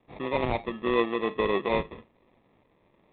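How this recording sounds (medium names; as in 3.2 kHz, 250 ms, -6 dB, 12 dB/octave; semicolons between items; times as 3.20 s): tremolo saw up 1.9 Hz, depth 35%; aliases and images of a low sample rate 1.5 kHz, jitter 0%; G.726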